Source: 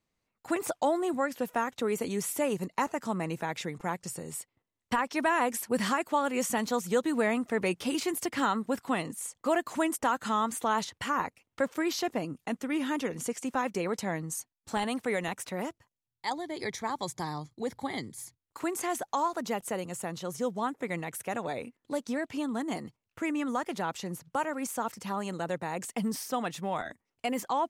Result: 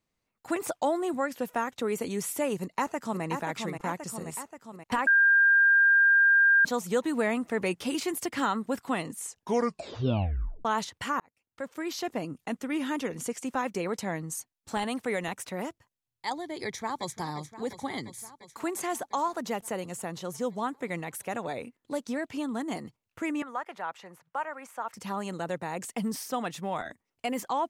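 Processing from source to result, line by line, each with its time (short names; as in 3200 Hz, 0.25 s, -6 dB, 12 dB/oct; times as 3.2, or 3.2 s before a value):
2.59–3.24 echo throw 0.53 s, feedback 65%, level -5.5 dB
5.07–6.65 bleep 1600 Hz -17 dBFS
9.19 tape stop 1.46 s
11.2–12.26 fade in
16.65–17.18 echo throw 0.35 s, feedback 80%, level -12.5 dB
23.42–24.94 three-band isolator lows -17 dB, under 580 Hz, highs -15 dB, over 2500 Hz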